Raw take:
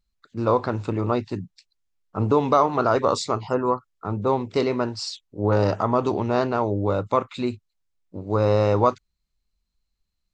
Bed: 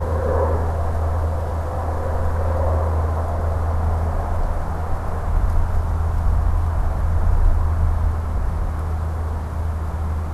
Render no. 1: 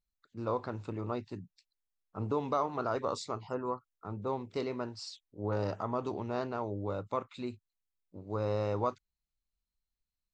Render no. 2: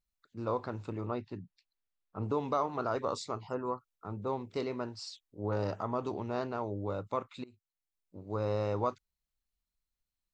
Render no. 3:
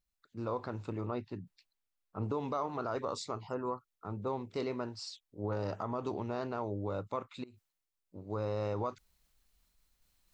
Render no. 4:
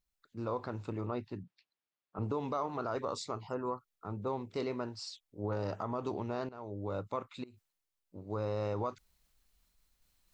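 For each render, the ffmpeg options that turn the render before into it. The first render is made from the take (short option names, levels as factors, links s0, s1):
-af "volume=0.224"
-filter_complex "[0:a]asettb=1/sr,asplit=3[s0][s1][s2];[s0]atrim=end=1.064[s3];[s1]atrim=start=1.06:end=2.23,asetpts=PTS-STARTPTS,afade=t=in:d=0.004:c=qsin,afade=t=out:st=1.166:d=0.004:c=qsin,lowpass=4000[s4];[s2]atrim=start=2.226[s5];[s3][s4]acrossfade=d=0.004:c1=hsin:c2=qsin[s6];[s6][s5]acrossfade=d=0.004:c1=qsin:c2=hsin,asplit=2[s7][s8];[s7]atrim=end=7.44,asetpts=PTS-STARTPTS,afade=t=out:st=7.436:d=0.004:c=hsin:silence=0.0707946[s9];[s8]atrim=start=7.44,asetpts=PTS-STARTPTS,afade=t=in:d=0.79:silence=0.0707946[s10];[s9][s10]concat=n=2:v=0:a=1"
-af "alimiter=level_in=1.06:limit=0.0631:level=0:latency=1:release=58,volume=0.944,areverse,acompressor=mode=upward:threshold=0.00141:ratio=2.5,areverse"
-filter_complex "[0:a]asettb=1/sr,asplit=3[s0][s1][s2];[s0]atrim=end=1.434[s3];[s1]atrim=start=1.43:end=2.19,asetpts=PTS-STARTPTS,afade=t=in:d=0.004:c=qsin,afade=t=out:st=0.756:d=0.004:c=qsin,highpass=130,lowpass=3900[s4];[s2]atrim=start=2.186[s5];[s3][s4]acrossfade=d=0.004:c1=hsin:c2=qsin[s6];[s6][s5]acrossfade=d=0.004:c1=qsin:c2=hsin,asplit=2[s7][s8];[s7]atrim=end=6.49,asetpts=PTS-STARTPTS,afade=t=out:st=6.486:d=0.004:c=hsin:silence=0.158489[s9];[s8]atrim=start=6.49,asetpts=PTS-STARTPTS,afade=t=in:d=0.46:silence=0.158489[s10];[s9][s10]concat=n=2:v=0:a=1"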